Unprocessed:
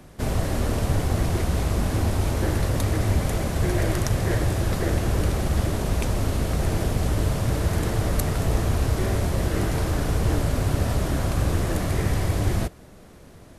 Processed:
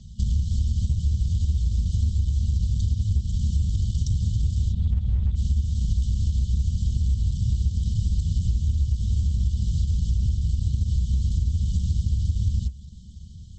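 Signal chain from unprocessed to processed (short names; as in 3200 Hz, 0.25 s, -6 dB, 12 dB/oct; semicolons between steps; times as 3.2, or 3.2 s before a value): FFT band-reject 230–2900 Hz; bell 67 Hz +14.5 dB 0.96 oct; compressor 8:1, threshold -20 dBFS, peak gain reduction 14 dB; 4.72–5.36 EQ curve 230 Hz 0 dB, 460 Hz -5 dB, 690 Hz -22 dB, 2200 Hz -15 dB, 3500 Hz -2 dB, 5500 Hz -21 dB; gain +1 dB; Opus 12 kbps 48000 Hz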